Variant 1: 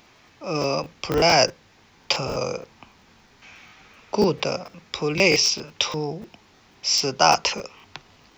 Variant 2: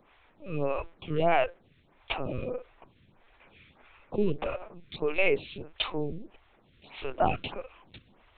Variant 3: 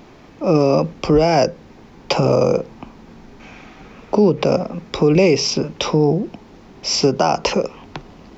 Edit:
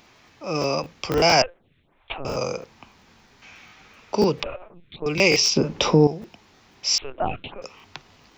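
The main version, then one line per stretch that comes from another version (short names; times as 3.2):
1
1.42–2.25 from 2
4.43–5.06 from 2
5.56–6.07 from 3
6.98–7.62 from 2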